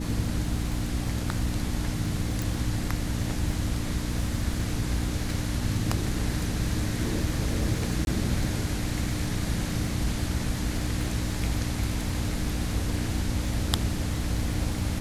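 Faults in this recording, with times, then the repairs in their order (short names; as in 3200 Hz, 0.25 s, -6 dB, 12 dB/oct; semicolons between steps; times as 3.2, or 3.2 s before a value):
crackle 54/s -35 dBFS
hum 60 Hz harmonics 5 -32 dBFS
2.42 pop
8.05–8.07 gap 21 ms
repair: de-click; de-hum 60 Hz, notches 5; interpolate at 8.05, 21 ms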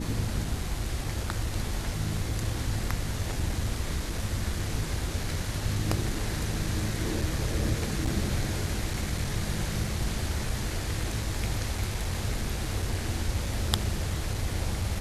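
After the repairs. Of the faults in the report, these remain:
none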